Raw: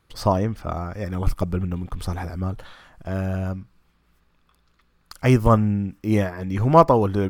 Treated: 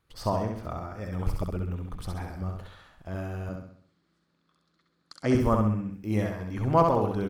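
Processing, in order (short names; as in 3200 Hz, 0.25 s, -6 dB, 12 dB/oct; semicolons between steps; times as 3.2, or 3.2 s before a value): 3.49–5.35 speaker cabinet 150–8800 Hz, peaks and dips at 190 Hz +5 dB, 310 Hz +9 dB, 550 Hz +3 dB, 890 Hz -4 dB, 2600 Hz -6 dB, 4200 Hz +6 dB; feedback echo 66 ms, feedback 46%, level -4 dB; gain -8.5 dB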